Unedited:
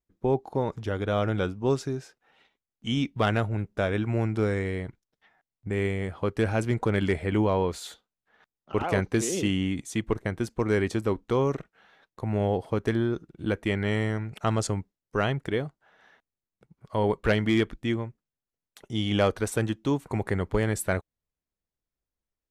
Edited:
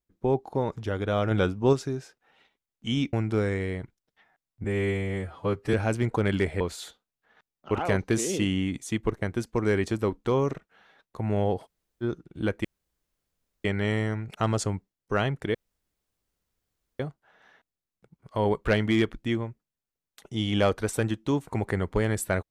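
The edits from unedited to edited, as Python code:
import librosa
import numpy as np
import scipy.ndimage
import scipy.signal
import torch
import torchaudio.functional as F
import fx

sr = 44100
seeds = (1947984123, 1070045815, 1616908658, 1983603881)

y = fx.edit(x, sr, fx.clip_gain(start_s=1.31, length_s=0.42, db=3.5),
    fx.cut(start_s=3.13, length_s=1.05),
    fx.stretch_span(start_s=5.69, length_s=0.73, factor=1.5),
    fx.cut(start_s=7.29, length_s=0.35),
    fx.room_tone_fill(start_s=12.69, length_s=0.37, crossfade_s=0.04),
    fx.insert_room_tone(at_s=13.68, length_s=1.0),
    fx.insert_room_tone(at_s=15.58, length_s=1.45), tone=tone)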